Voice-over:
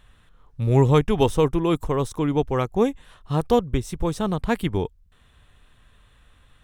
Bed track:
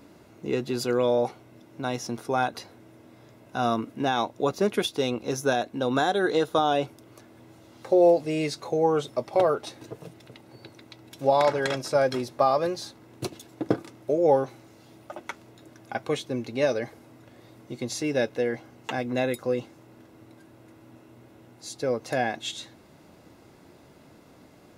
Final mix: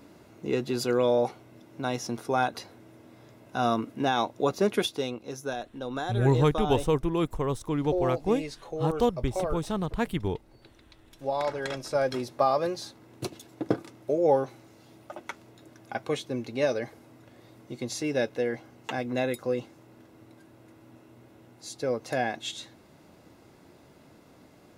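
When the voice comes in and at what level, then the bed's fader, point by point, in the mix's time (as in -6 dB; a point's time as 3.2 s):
5.50 s, -5.5 dB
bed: 4.83 s -0.5 dB
5.23 s -9 dB
11.24 s -9 dB
12.26 s -2 dB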